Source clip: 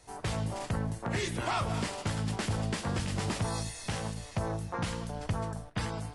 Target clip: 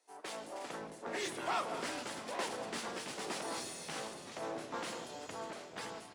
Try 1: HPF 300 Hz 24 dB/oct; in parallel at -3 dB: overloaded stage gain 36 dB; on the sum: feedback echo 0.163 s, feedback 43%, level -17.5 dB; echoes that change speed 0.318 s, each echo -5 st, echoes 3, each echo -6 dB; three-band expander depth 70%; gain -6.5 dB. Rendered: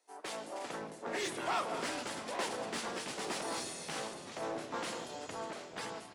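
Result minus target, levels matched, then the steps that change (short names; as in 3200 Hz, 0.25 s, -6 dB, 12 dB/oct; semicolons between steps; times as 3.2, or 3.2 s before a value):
overloaded stage: distortion -6 dB
change: overloaded stage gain 46.5 dB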